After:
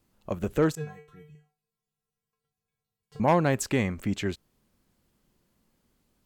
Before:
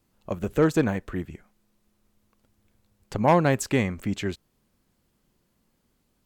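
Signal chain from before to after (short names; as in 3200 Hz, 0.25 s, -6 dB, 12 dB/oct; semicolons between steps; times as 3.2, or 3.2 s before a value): 0.75–3.2 resonator 150 Hz, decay 0.33 s, harmonics odd, mix 100%; in parallel at -2.5 dB: limiter -18.5 dBFS, peak gain reduction 7.5 dB; on the sum: gain -5.5 dB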